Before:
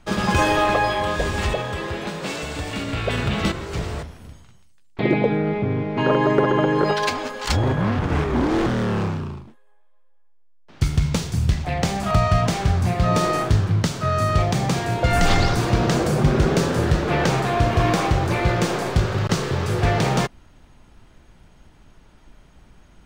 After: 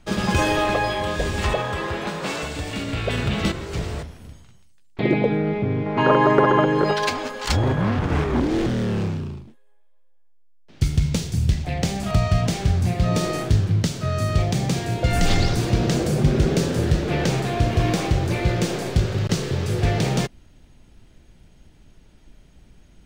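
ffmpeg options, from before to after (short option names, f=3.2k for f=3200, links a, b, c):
-af "asetnsamples=n=441:p=0,asendcmd='1.44 equalizer g 3.5;2.48 equalizer g -3.5;5.86 equalizer g 5.5;6.64 equalizer g -1;8.4 equalizer g -9.5',equalizer=f=1.1k:t=o:w=1.4:g=-4.5"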